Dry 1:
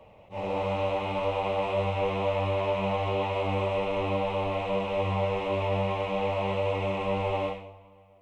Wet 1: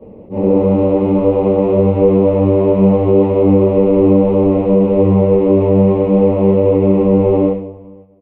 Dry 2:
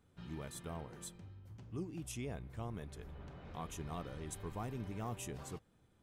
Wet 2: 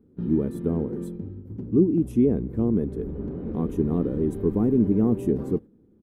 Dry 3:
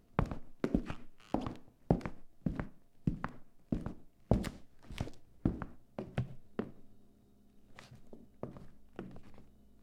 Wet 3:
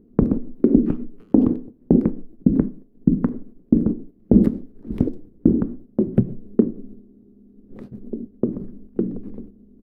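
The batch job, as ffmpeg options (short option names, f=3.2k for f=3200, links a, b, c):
-af "agate=range=-8dB:threshold=-55dB:ratio=16:detection=peak,firequalizer=gain_entry='entry(130,0);entry(220,13);entry(440,9);entry(640,-8);entry(1200,-12);entry(1800,-15);entry(2800,-21);entry(4400,-22);entry(6800,-25);entry(12000,-14)':delay=0.05:min_phase=1,alimiter=level_in=15.5dB:limit=-1dB:release=50:level=0:latency=1,volume=-1dB"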